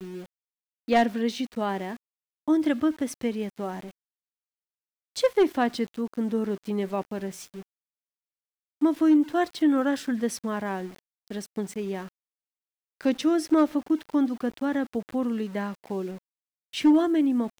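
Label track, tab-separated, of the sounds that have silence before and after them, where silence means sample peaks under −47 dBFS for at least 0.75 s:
5.160000	7.630000	sound
8.810000	12.090000	sound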